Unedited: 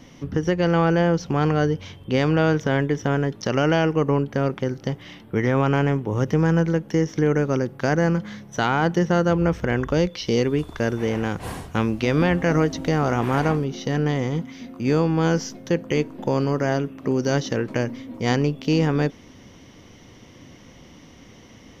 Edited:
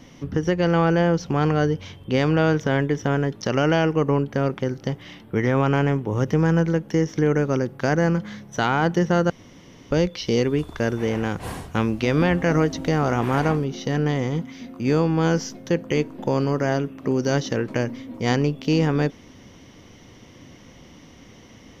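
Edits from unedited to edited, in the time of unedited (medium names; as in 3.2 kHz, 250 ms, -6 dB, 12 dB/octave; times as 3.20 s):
9.30–9.91 s: room tone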